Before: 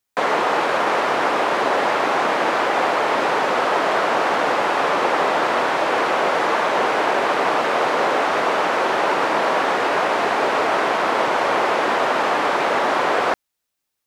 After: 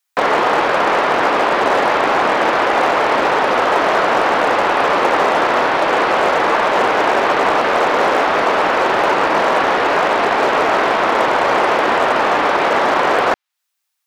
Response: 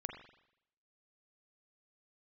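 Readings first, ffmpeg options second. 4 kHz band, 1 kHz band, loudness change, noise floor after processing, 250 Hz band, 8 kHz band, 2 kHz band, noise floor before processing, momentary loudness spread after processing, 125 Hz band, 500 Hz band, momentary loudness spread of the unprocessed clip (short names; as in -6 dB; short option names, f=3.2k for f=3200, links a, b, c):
+3.5 dB, +4.5 dB, +4.5 dB, -74 dBFS, +4.5 dB, +2.0 dB, +4.5 dB, -79 dBFS, 0 LU, +5.5 dB, +4.5 dB, 0 LU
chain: -filter_complex "[0:a]acrossover=split=710|4600[a][b][c];[a]acrusher=bits=4:mix=0:aa=0.5[d];[c]acompressor=threshold=-59dB:ratio=6[e];[d][b][e]amix=inputs=3:normalize=0,volume=4.5dB"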